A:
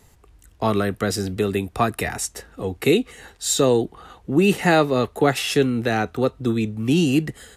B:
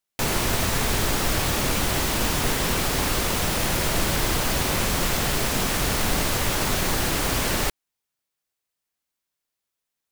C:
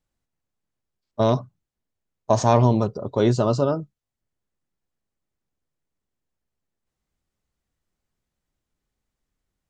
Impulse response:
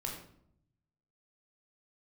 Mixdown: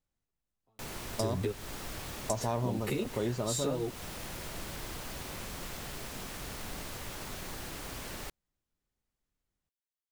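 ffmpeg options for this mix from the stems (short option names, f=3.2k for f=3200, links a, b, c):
-filter_complex "[0:a]acompressor=threshold=-26dB:ratio=6,equalizer=f=160:t=o:w=3:g=5,asplit=2[a][b];[b]adelay=10.7,afreqshift=1[c];[a][c]amix=inputs=2:normalize=1,adelay=50,volume=3dB[d];[1:a]adelay=600,volume=-18dB[e];[2:a]volume=-6.5dB,asplit=2[f][g];[g]apad=whole_len=336258[h];[d][h]sidechaingate=range=-48dB:threshold=-43dB:ratio=16:detection=peak[i];[i][e][f]amix=inputs=3:normalize=0,acompressor=threshold=-32dB:ratio=2.5"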